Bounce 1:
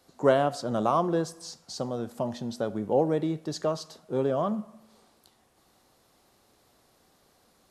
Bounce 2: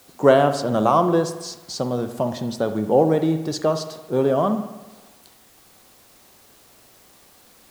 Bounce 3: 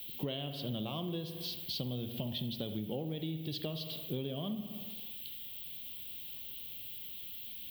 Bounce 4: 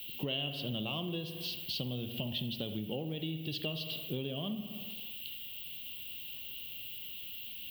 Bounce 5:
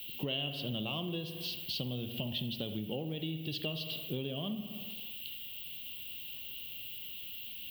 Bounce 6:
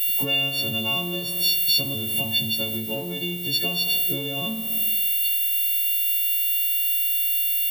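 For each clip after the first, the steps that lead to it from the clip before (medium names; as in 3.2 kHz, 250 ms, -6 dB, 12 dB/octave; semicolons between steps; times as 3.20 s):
in parallel at -11 dB: word length cut 8-bit, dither triangular; on the sum: reverberation RT60 1.1 s, pre-delay 56 ms, DRR 10 dB; trim +5 dB
FFT filter 140 Hz 0 dB, 1.4 kHz -21 dB, 3.2 kHz +13 dB, 7.1 kHz -25 dB, 15 kHz +13 dB; compression 12:1, threshold -34 dBFS, peak gain reduction 17 dB
peaking EQ 2.8 kHz +13 dB 0.2 oct
no audible change
partials quantised in pitch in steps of 4 st; crossover distortion -52 dBFS; trim +7.5 dB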